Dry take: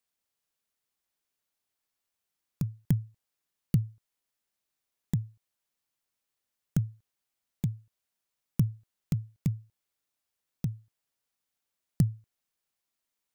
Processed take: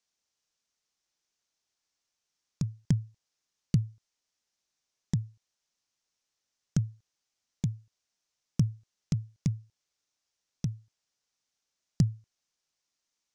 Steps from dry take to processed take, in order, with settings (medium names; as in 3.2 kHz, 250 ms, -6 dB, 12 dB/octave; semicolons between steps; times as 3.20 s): resonant low-pass 6 kHz, resonance Q 2.8